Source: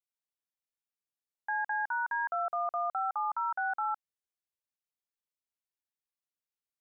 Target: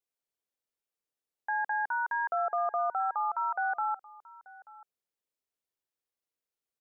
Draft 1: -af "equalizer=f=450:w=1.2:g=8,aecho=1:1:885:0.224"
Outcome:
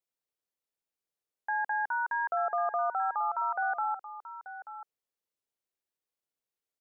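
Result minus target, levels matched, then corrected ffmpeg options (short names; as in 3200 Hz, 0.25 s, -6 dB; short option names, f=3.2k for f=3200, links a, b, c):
echo-to-direct +8 dB
-af "equalizer=f=450:w=1.2:g=8,aecho=1:1:885:0.0891"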